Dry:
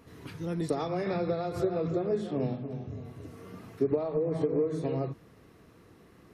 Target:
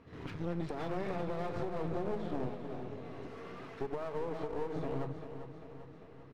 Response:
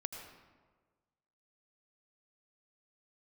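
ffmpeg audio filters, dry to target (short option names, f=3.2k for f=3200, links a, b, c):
-filter_complex "[0:a]lowpass=3.4k,agate=range=-9dB:threshold=-49dB:ratio=16:detection=peak,asettb=1/sr,asplit=3[a][b][c];[a]atrim=end=2.494[d];[b]atrim=start=2.49:end=4.76,asetpts=PTS-STARTPTS,afade=t=in:d=0.004:c=qsin,afade=t=out:st=2.266:d=0.004:c=qsin,highpass=f=680:p=1[e];[c]atrim=start=4.756[f];[d][e]acrossfade=d=0.004:c1=hsin:c2=qsin[g];[g][f]acrossfade=d=0.004:c1=qsin:c2=hsin,alimiter=level_in=1dB:limit=-24dB:level=0:latency=1:release=208,volume=-1dB,acompressor=threshold=-50dB:ratio=1.5,aeval=exprs='clip(val(0),-1,0.00237)':c=same,aecho=1:1:396|792|1188|1584|1980|2376|2772:0.316|0.183|0.106|0.0617|0.0358|0.0208|0.012,volume=6.5dB"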